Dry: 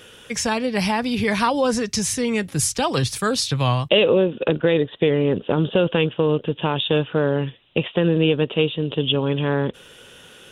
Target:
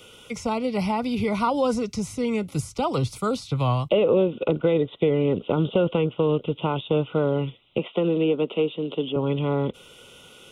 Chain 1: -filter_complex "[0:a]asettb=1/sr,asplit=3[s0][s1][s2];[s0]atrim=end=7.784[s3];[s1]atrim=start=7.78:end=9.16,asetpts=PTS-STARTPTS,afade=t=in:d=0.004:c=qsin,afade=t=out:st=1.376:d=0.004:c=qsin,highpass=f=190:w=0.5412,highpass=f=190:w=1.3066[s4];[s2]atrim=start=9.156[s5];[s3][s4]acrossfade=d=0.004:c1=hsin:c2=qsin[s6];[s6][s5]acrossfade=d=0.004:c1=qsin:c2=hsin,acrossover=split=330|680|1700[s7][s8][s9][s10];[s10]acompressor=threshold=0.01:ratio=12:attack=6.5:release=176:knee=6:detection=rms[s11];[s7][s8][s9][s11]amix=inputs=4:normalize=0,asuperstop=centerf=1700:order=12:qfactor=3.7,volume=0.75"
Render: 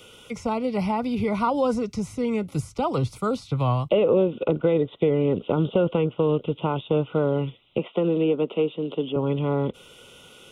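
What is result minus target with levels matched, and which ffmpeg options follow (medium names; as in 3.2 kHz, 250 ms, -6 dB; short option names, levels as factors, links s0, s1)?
compression: peak gain reduction +6 dB
-filter_complex "[0:a]asettb=1/sr,asplit=3[s0][s1][s2];[s0]atrim=end=7.784[s3];[s1]atrim=start=7.78:end=9.16,asetpts=PTS-STARTPTS,afade=t=in:d=0.004:c=qsin,afade=t=out:st=1.376:d=0.004:c=qsin,highpass=f=190:w=0.5412,highpass=f=190:w=1.3066[s4];[s2]atrim=start=9.156[s5];[s3][s4]acrossfade=d=0.004:c1=hsin:c2=qsin[s6];[s6][s5]acrossfade=d=0.004:c1=qsin:c2=hsin,acrossover=split=330|680|1700[s7][s8][s9][s10];[s10]acompressor=threshold=0.0211:ratio=12:attack=6.5:release=176:knee=6:detection=rms[s11];[s7][s8][s9][s11]amix=inputs=4:normalize=0,asuperstop=centerf=1700:order=12:qfactor=3.7,volume=0.75"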